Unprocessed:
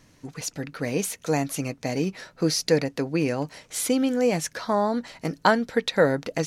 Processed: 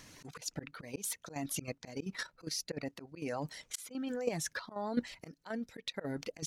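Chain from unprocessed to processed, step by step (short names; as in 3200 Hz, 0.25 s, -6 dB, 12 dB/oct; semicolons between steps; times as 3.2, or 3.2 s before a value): reverb removal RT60 1.1 s; reverse; compressor 8:1, threshold -33 dBFS, peak gain reduction 20 dB; reverse; auto swell 0.187 s; level quantiser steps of 11 dB; mismatched tape noise reduction encoder only; gain +7 dB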